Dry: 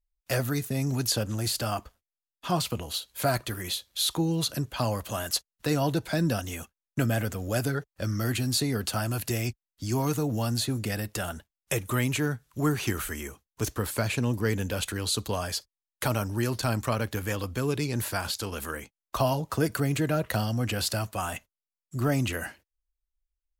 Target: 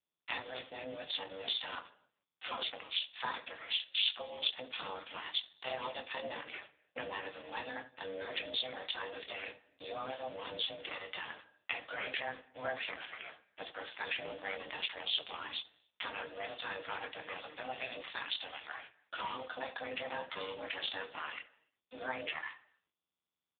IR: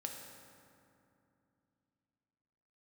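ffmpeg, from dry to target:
-filter_complex "[0:a]aeval=exprs='val(0)*sin(2*PI*430*n/s)':c=same,asplit=2[a][b];[b]acompressor=threshold=-39dB:ratio=10,volume=-1.5dB[c];[a][c]amix=inputs=2:normalize=0,aeval=exprs='val(0)*gte(abs(val(0)),0.00944)':c=same,asetrate=39289,aresample=44100,atempo=1.12246,aderivative,asplit=2[d][e];[e]adelay=23,volume=-6.5dB[f];[d][f]amix=inputs=2:normalize=0,asplit=2[g][h];[h]adelay=69,lowpass=f=1.2k:p=1,volume=-11dB,asplit=2[i][j];[j]adelay=69,lowpass=f=1.2k:p=1,volume=0.22,asplit=2[k][l];[l]adelay=69,lowpass=f=1.2k:p=1,volume=0.22[m];[g][i][k][m]amix=inputs=4:normalize=0,asplit=2[n][o];[1:a]atrim=start_sample=2205,afade=t=out:st=0.35:d=0.01,atrim=end_sample=15876[p];[o][p]afir=irnorm=-1:irlink=0,volume=-13dB[q];[n][q]amix=inputs=2:normalize=0,volume=9dB" -ar 8000 -c:a libopencore_amrnb -b:a 5150

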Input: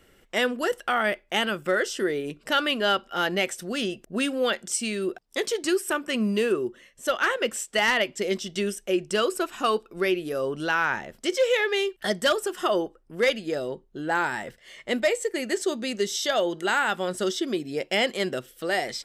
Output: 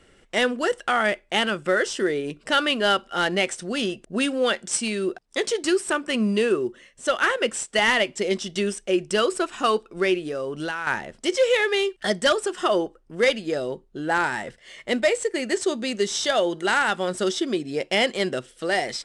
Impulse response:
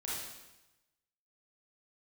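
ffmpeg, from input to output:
-filter_complex "[0:a]asettb=1/sr,asplit=3[a][b][c];[a]atrim=end=10.174[d];[b]atrim=start=10.17:end=10.87,asetpts=PTS-STARTPTS,afade=t=in:d=0.004:c=qsin,afade=t=out:st=0.696:d=0.004:c=qsin,acompressor=threshold=-28dB:ratio=12[e];[c]atrim=start=10.866[f];[d][e]acrossfade=d=0.004:c1=hsin:c2=qsin[g];[g][f]acrossfade=d=0.004:c1=qsin:c2=hsin,volume=2.5dB" -ar 22050 -c:a adpcm_ima_wav

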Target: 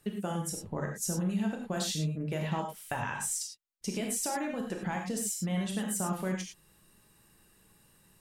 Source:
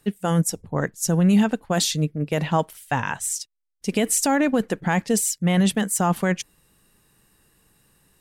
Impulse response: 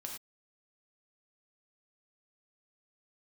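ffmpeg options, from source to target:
-filter_complex "[0:a]acompressor=threshold=-28dB:ratio=5[a];[1:a]atrim=start_sample=2205[b];[a][b]afir=irnorm=-1:irlink=0"

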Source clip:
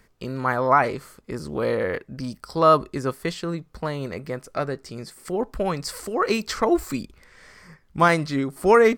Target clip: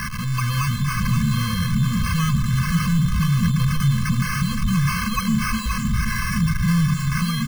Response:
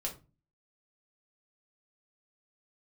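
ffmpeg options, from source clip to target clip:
-filter_complex "[0:a]aeval=exprs='val(0)+0.5*0.0891*sgn(val(0))':c=same,lowshelf=f=60:g=-11,bandreject=f=50:t=h:w=6,bandreject=f=100:t=h:w=6,bandreject=f=150:t=h:w=6,bandreject=f=200:t=h:w=6,bandreject=f=250:t=h:w=6,bandreject=f=300:t=h:w=6,bandreject=f=350:t=h:w=6,acrossover=split=210[a][b];[a]dynaudnorm=f=100:g=11:m=13dB[c];[b]alimiter=limit=-12.5dB:level=0:latency=1:release=346[d];[c][d]amix=inputs=2:normalize=0,acrusher=samples=12:mix=1:aa=0.000001,acontrast=66,asoftclip=type=tanh:threshold=-15.5dB,atempo=1.2,asuperstop=centerf=660:order=12:qfactor=1.3,asplit=2[e][f];[f]aecho=0:1:522:0.473[g];[e][g]amix=inputs=2:normalize=0,afftfilt=real='re*eq(mod(floor(b*sr/1024/250),2),0)':imag='im*eq(mod(floor(b*sr/1024/250),2),0)':win_size=1024:overlap=0.75"

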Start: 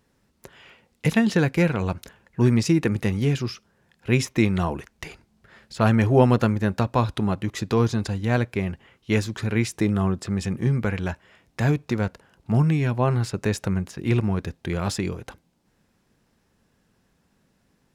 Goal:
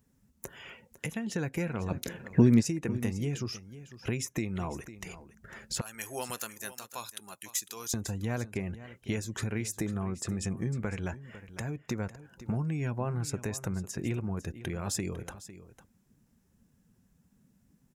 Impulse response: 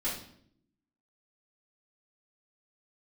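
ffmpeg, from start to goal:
-filter_complex "[0:a]asettb=1/sr,asplit=3[a][b][c];[a]atrim=end=5.814[d];[b]atrim=start=5.81:end=7.94,asetpts=PTS-STARTPTS,afade=t=in:d=0.004:c=qsin,afade=t=out:st=2.126:d=0.004:c=qsin,aderivative[e];[c]atrim=start=7.936[f];[d][e]acrossfade=d=0.004:c1=hsin:c2=qsin[g];[g][f]acrossfade=d=0.004:c1=qsin:c2=hsin,acompressor=threshold=-35dB:ratio=6,aexciter=amount=1.7:drive=8.9:freq=6k,alimiter=limit=-23.5dB:level=0:latency=1:release=345,asplit=3[h][i][j];[h]afade=t=out:st=1.9:d=0.02[k];[i]equalizer=f=125:t=o:w=1:g=7,equalizer=f=250:t=o:w=1:g=11,equalizer=f=500:t=o:w=1:g=8,equalizer=f=2k:t=o:w=1:g=6,equalizer=f=4k:t=o:w=1:g=8,afade=t=in:st=1.9:d=0.02,afade=t=out:st=2.6:d=0.02[l];[j]afade=t=in:st=2.6:d=0.02[m];[k][l][m]amix=inputs=3:normalize=0,afftdn=nr=15:nf=-56,aecho=1:1:502:0.178,volume=4dB"

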